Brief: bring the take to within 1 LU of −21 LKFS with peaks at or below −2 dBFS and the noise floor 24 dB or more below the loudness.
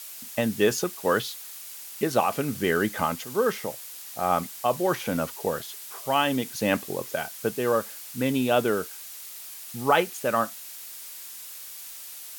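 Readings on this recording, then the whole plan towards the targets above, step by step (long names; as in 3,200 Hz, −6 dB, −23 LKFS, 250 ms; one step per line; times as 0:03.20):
background noise floor −41 dBFS; target noise floor −51 dBFS; integrated loudness −26.5 LKFS; sample peak −8.0 dBFS; target loudness −21.0 LKFS
→ noise reduction from a noise print 10 dB
level +5.5 dB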